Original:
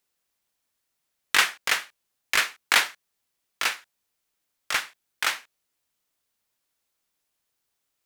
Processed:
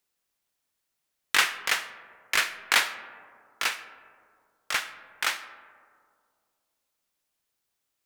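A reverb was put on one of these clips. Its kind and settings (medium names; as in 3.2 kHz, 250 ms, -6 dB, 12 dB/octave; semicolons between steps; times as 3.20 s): algorithmic reverb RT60 2.2 s, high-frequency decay 0.3×, pre-delay 15 ms, DRR 12 dB; trim -2 dB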